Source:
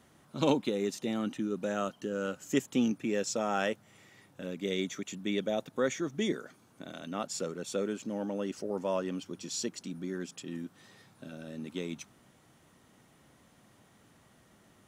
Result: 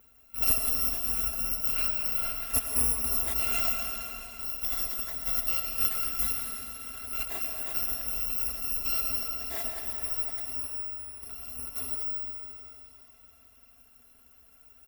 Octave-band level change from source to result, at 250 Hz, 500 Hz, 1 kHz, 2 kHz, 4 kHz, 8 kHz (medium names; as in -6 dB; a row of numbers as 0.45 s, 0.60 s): -15.0 dB, -13.5 dB, -2.5 dB, +1.0 dB, +2.5 dB, +9.5 dB